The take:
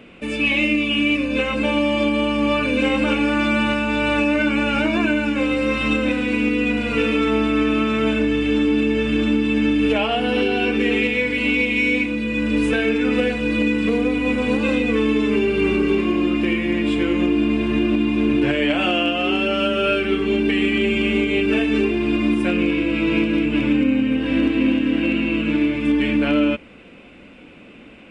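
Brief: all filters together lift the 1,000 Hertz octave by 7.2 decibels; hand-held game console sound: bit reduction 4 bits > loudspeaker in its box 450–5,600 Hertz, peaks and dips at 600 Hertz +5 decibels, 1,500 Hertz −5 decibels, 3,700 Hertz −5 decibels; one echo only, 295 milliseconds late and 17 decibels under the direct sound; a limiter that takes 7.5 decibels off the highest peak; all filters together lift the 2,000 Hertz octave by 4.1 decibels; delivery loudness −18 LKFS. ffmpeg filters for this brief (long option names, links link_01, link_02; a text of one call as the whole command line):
ffmpeg -i in.wav -af "equalizer=frequency=1000:width_type=o:gain=9,equalizer=frequency=2000:width_type=o:gain=5,alimiter=limit=-11dB:level=0:latency=1,aecho=1:1:295:0.141,acrusher=bits=3:mix=0:aa=0.000001,highpass=450,equalizer=frequency=600:width_type=q:width=4:gain=5,equalizer=frequency=1500:width_type=q:width=4:gain=-5,equalizer=frequency=3700:width_type=q:width=4:gain=-5,lowpass=frequency=5600:width=0.5412,lowpass=frequency=5600:width=1.3066,volume=3dB" out.wav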